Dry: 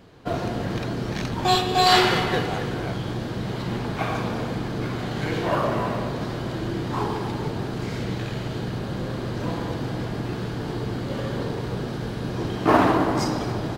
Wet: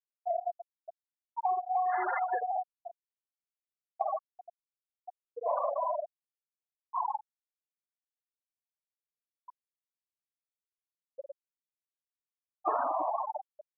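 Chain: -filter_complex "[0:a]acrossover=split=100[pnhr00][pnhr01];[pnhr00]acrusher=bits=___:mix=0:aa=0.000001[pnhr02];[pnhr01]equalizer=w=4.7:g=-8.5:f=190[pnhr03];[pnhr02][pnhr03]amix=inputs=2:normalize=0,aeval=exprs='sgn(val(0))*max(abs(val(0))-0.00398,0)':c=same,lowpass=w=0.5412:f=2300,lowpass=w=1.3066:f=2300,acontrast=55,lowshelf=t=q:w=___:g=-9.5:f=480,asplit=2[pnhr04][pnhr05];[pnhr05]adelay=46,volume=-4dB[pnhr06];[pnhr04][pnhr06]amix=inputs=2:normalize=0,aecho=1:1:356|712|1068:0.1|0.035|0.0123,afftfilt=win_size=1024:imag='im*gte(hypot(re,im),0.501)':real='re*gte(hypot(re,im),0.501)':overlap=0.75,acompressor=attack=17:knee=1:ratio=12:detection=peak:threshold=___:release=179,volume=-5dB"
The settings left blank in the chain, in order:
5, 1.5, -23dB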